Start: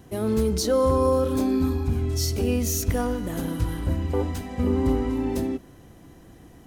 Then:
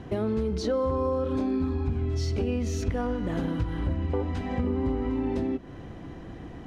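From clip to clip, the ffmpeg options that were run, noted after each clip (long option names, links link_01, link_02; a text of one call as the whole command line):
ffmpeg -i in.wav -af "lowpass=3200,acompressor=threshold=-34dB:ratio=4,volume=7.5dB" out.wav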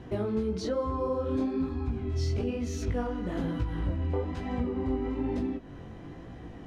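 ffmpeg -i in.wav -af "flanger=delay=16:depth=7.3:speed=1.1" out.wav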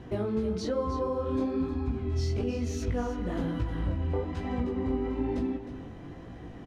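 ffmpeg -i in.wav -af "aecho=1:1:311:0.266" out.wav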